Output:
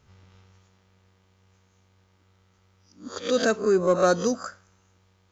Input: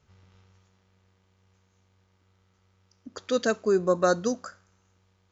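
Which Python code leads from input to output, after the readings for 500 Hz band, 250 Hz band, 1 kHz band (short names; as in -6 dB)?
+2.5 dB, +2.5 dB, +2.5 dB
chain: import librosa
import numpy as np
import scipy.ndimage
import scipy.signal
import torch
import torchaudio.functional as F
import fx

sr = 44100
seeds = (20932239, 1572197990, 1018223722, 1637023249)

p1 = fx.spec_swells(x, sr, rise_s=0.31)
p2 = 10.0 ** (-24.0 / 20.0) * np.tanh(p1 / 10.0 ** (-24.0 / 20.0))
y = p1 + F.gain(torch.from_numpy(p2), -7.0).numpy()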